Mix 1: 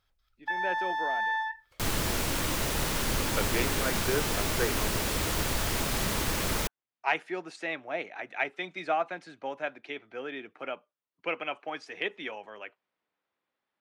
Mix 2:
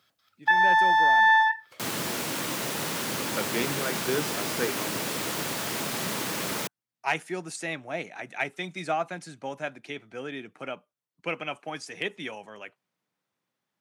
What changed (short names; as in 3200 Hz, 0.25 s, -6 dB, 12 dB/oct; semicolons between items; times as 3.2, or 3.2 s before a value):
speech: remove three-band isolator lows -22 dB, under 250 Hz, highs -21 dB, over 4300 Hz; first sound +11.0 dB; master: add HPF 140 Hz 24 dB/oct